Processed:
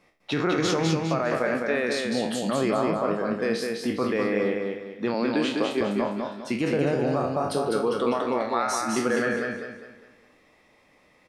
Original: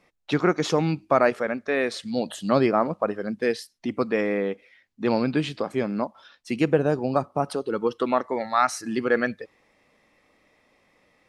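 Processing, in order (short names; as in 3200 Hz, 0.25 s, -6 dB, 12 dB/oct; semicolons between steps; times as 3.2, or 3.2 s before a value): spectral trails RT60 0.38 s; 5.14–5.81 HPF 210 Hz 24 dB/oct; limiter -15.5 dBFS, peak gain reduction 10.5 dB; on a send: feedback echo 0.203 s, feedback 37%, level -3.5 dB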